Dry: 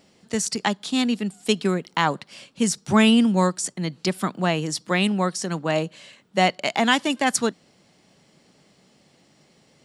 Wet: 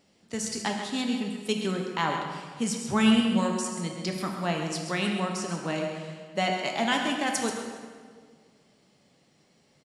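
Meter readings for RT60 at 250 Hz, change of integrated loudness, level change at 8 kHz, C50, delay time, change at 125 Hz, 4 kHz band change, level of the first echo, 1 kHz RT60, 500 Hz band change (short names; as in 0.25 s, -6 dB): 2.0 s, -6.0 dB, -6.0 dB, 3.0 dB, 0.133 s, -6.0 dB, -5.5 dB, -9.0 dB, 1.7 s, -6.0 dB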